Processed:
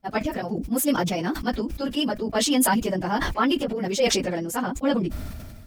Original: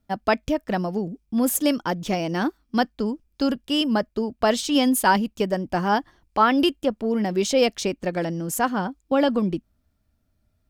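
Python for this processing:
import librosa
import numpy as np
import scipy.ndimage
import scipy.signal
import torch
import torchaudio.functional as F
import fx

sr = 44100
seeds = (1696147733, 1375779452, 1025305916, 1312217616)

y = fx.peak_eq(x, sr, hz=2100.0, db=2.5, octaves=0.35)
y = fx.stretch_vocoder_free(y, sr, factor=0.53)
y = fx.sustainer(y, sr, db_per_s=33.0)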